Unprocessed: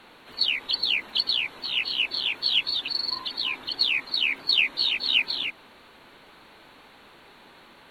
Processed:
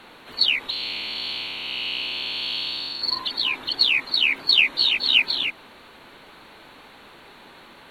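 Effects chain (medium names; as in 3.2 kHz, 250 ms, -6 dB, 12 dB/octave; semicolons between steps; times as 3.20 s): 0.70–3.02 s: spectral blur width 329 ms; trim +4.5 dB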